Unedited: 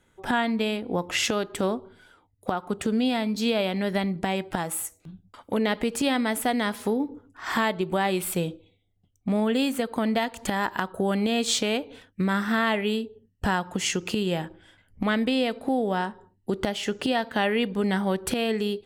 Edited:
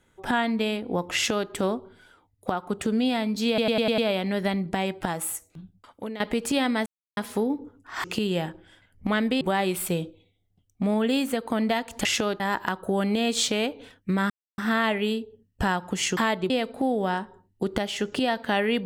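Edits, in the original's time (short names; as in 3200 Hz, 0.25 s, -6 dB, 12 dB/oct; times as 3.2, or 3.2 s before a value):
1.15–1.5 copy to 10.51
3.48 stutter 0.10 s, 6 plays
5.1–5.7 fade out, to -14.5 dB
6.36–6.67 mute
7.54–7.87 swap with 14–15.37
12.41 insert silence 0.28 s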